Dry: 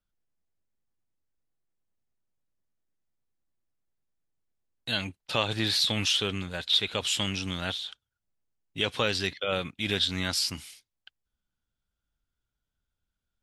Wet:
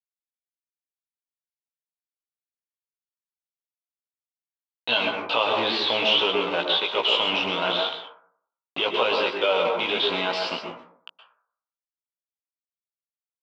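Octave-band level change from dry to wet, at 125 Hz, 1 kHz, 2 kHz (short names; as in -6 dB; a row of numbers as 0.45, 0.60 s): -10.0, +11.5, +6.5 dB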